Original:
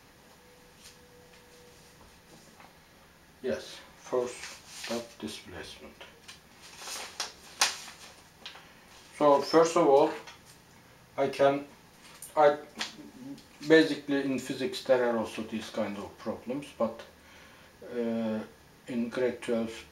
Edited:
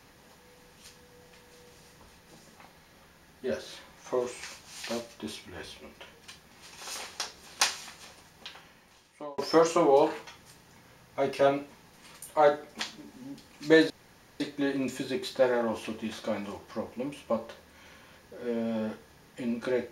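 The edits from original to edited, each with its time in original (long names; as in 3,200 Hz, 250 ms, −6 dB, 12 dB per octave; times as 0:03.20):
0:08.51–0:09.38: fade out
0:13.90: splice in room tone 0.50 s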